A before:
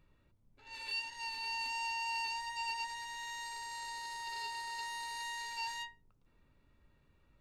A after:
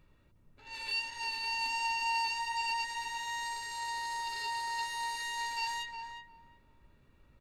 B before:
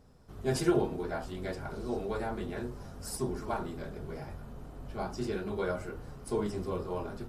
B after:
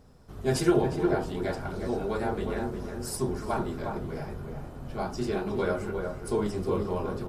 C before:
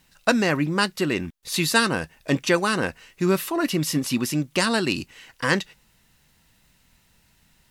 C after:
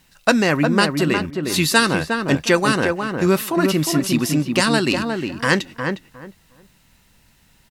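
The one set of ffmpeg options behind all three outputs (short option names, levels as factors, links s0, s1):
-filter_complex "[0:a]asplit=2[s0][s1];[s1]adelay=358,lowpass=f=1400:p=1,volume=0.631,asplit=2[s2][s3];[s3]adelay=358,lowpass=f=1400:p=1,volume=0.21,asplit=2[s4][s5];[s5]adelay=358,lowpass=f=1400:p=1,volume=0.21[s6];[s0][s2][s4][s6]amix=inputs=4:normalize=0,volume=1.58"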